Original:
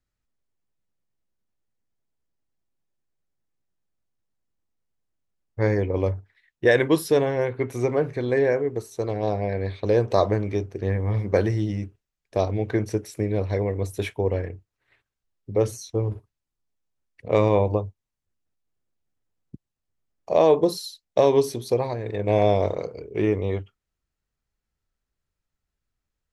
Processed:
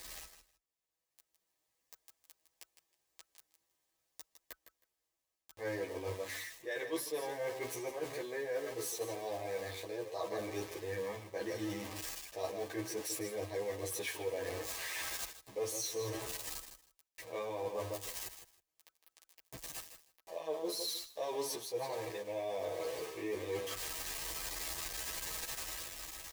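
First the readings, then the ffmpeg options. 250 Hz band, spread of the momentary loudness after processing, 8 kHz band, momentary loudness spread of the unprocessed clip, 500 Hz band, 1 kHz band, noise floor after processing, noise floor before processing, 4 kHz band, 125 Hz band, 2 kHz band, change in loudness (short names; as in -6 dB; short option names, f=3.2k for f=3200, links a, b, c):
-18.0 dB, 11 LU, +2.5 dB, 10 LU, -16.5 dB, -14.5 dB, under -85 dBFS, -84 dBFS, -3.0 dB, -24.5 dB, -10.5 dB, -16.0 dB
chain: -filter_complex "[0:a]aeval=exprs='val(0)+0.5*0.0282*sgn(val(0))':c=same,highpass=40,bass=f=250:g=-8,treble=f=4k:g=4,aecho=1:1:6.2:0.39,dynaudnorm=f=190:g=13:m=15dB,asuperstop=centerf=1400:order=20:qfactor=7.7,equalizer=f=170:t=o:w=1.7:g=-11,aecho=1:1:158|316:0.282|0.0507,areverse,acompressor=threshold=-29dB:ratio=6,areverse,asplit=2[a][b];[b]adelay=11.6,afreqshift=2.7[c];[a][c]amix=inputs=2:normalize=1,volume=-5dB"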